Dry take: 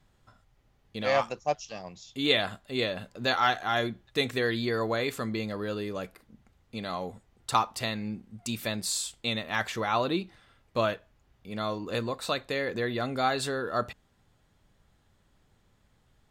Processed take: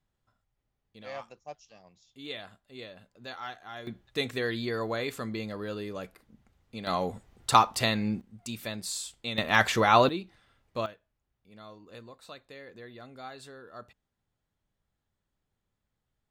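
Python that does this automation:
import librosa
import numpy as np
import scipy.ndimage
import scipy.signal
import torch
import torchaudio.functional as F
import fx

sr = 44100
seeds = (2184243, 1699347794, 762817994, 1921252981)

y = fx.gain(x, sr, db=fx.steps((0.0, -15.0), (3.87, -3.0), (6.87, 5.0), (8.21, -4.5), (9.38, 7.0), (10.09, -5.0), (10.86, -16.5)))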